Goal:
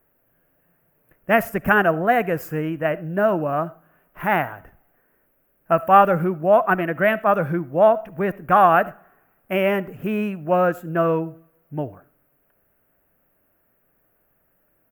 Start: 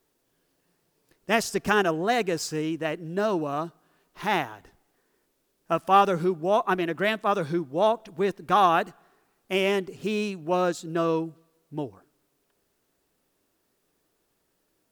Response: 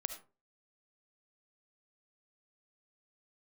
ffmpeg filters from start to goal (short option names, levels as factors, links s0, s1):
-filter_complex "[0:a]firequalizer=gain_entry='entry(120,0);entry(390,-9);entry(590,1);entry(930,-6);entry(1500,0);entry(2800,-10);entry(3900,-30);entry(9200,-16);entry(13000,3)':delay=0.05:min_phase=1,asplit=2[s0][s1];[1:a]atrim=start_sample=2205[s2];[s1][s2]afir=irnorm=-1:irlink=0,volume=0.335[s3];[s0][s3]amix=inputs=2:normalize=0,volume=2.11"